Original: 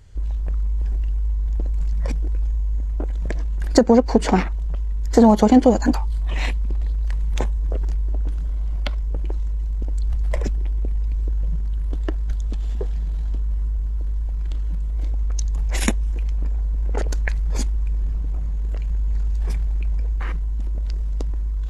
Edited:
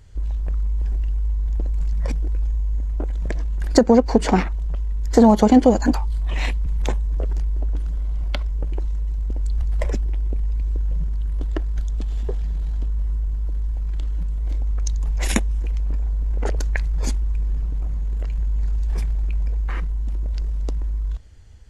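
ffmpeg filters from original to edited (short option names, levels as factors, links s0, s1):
-filter_complex "[0:a]asplit=2[s0][s1];[s0]atrim=end=6.662[s2];[s1]atrim=start=7.178[s3];[s2][s3]acrossfade=d=0.004:c1=hsin:c2=hsin"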